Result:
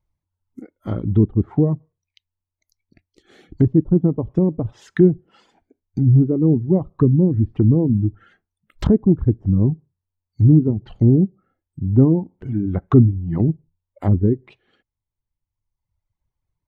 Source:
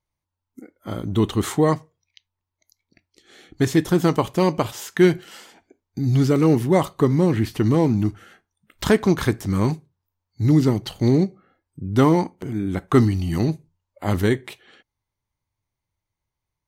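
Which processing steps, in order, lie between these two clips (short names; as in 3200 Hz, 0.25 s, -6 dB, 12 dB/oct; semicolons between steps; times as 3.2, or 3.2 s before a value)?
reverb removal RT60 1.4 s; tilt -2.5 dB/oct; treble ducked by the level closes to 370 Hz, closed at -14 dBFS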